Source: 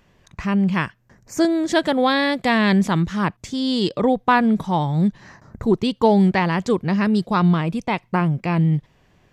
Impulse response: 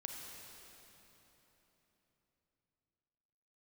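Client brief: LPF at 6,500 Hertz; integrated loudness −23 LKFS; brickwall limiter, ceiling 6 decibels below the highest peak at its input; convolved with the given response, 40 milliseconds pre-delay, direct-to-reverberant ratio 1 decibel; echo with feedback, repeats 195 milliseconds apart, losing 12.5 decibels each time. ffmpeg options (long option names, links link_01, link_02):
-filter_complex "[0:a]lowpass=6500,alimiter=limit=-10dB:level=0:latency=1,aecho=1:1:195|390|585:0.237|0.0569|0.0137,asplit=2[link_01][link_02];[1:a]atrim=start_sample=2205,adelay=40[link_03];[link_02][link_03]afir=irnorm=-1:irlink=0,volume=1dB[link_04];[link_01][link_04]amix=inputs=2:normalize=0,volume=-5dB"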